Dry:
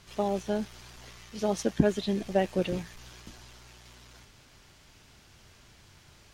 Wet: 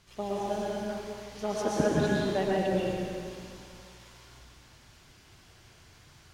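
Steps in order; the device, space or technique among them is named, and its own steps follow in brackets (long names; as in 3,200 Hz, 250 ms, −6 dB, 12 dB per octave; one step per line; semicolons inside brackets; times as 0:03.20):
stairwell (convolution reverb RT60 2.2 s, pre-delay 109 ms, DRR −6.5 dB)
0:00.88–0:02.57: dynamic equaliser 1,200 Hz, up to +6 dB, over −40 dBFS, Q 1.1
level −6.5 dB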